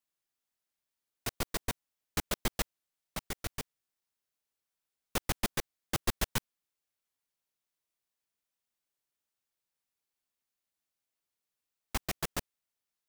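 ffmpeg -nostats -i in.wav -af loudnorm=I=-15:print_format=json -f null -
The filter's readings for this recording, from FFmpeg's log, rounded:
"input_i" : "-37.2",
"input_tp" : "-14.9",
"input_lra" : "5.4",
"input_thresh" : "-47.2",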